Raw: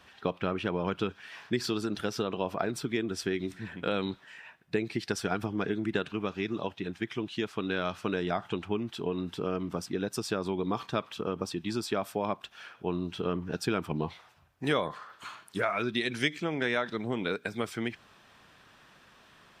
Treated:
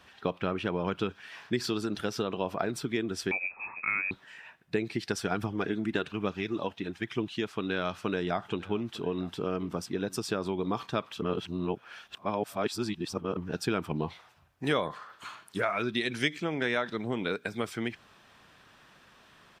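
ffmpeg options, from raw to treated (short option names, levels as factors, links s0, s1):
-filter_complex "[0:a]asettb=1/sr,asplit=3[s0][s1][s2];[s0]atrim=end=3.314[s3];[s1]atrim=start=3.31:end=4.11,asetpts=PTS-STARTPTS,afade=t=in:d=0.004:c=qsin,afade=t=out:st=0.796:d=0.004:c=qsin,lowpass=f=2300:t=q:w=0.5098,lowpass=f=2300:t=q:w=0.6013,lowpass=f=2300:t=q:w=0.9,lowpass=f=2300:t=q:w=2.563,afreqshift=-2700[s4];[s2]atrim=start=4.106[s5];[s3][s4]acrossfade=d=0.004:c1=hsin:c2=qsin[s6];[s6][s5]acrossfade=d=0.004:c1=qsin:c2=hsin,asettb=1/sr,asplit=3[s7][s8][s9];[s7]atrim=end=5.374[s10];[s8]atrim=start=5.37:end=7.36,asetpts=PTS-STARTPTS,afade=t=in:d=0.004:c=qsin,afade=t=out:st=1.986:d=0.004:c=qsin,aphaser=in_gain=1:out_gain=1:delay=4.7:decay=0.31:speed=1.1:type=triangular[s11];[s9]atrim=start=7.356[s12];[s10][s11]acrossfade=d=0.004:c1=hsin:c2=qsin[s13];[s13][s12]acrossfade=d=0.004:c1=qsin:c2=hsin,asplit=3[s14][s15][s16];[s14]afade=t=out:st=8.48:d=0.02[s17];[s15]aecho=1:1:902:0.0944,afade=t=in:st=8.48:d=0.02,afade=t=out:st=10.67:d=0.02[s18];[s16]afade=t=in:st=10.67:d=0.02[s19];[s17][s18][s19]amix=inputs=3:normalize=0,asplit=3[s20][s21][s22];[s20]atrim=end=11.222[s23];[s21]atrim=start=11.218:end=13.372,asetpts=PTS-STARTPTS,areverse[s24];[s22]atrim=start=13.368[s25];[s23][s24]acrossfade=d=0.004:c1=hsin:c2=hsin[s26];[s26][s25]acrossfade=d=0.004:c1=hsin:c2=hsin"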